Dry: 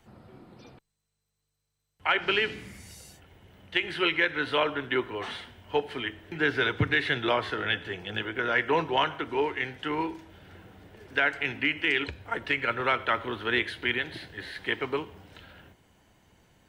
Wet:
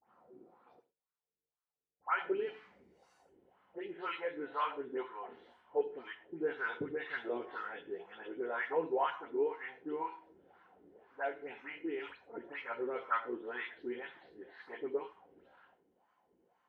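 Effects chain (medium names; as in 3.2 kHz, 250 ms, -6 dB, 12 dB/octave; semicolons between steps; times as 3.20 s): delay that grows with frequency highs late, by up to 183 ms; wah-wah 2 Hz 340–1200 Hz, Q 3.3; gated-style reverb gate 150 ms falling, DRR 9.5 dB; trim -2 dB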